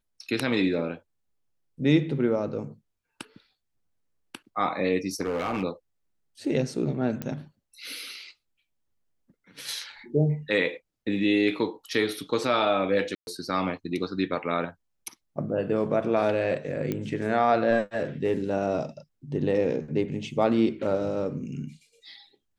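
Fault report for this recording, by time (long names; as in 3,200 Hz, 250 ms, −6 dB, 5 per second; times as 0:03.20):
0:05.21–0:05.64: clipping −24 dBFS
0:07.22: click −17 dBFS
0:13.15–0:13.27: drop-out 121 ms
0:16.92: click −16 dBFS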